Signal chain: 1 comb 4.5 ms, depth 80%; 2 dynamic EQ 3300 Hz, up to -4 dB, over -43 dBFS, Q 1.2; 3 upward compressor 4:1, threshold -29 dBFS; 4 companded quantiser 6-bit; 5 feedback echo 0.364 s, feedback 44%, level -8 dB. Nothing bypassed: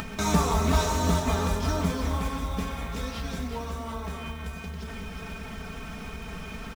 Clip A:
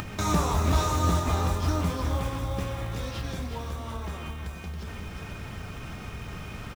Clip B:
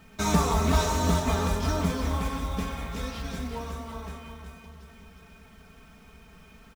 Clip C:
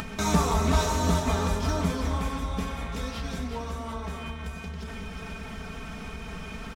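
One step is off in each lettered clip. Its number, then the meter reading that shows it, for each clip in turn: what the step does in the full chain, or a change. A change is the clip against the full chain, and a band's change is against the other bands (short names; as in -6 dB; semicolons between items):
1, 125 Hz band +3.5 dB; 3, momentary loudness spread change +3 LU; 4, distortion -25 dB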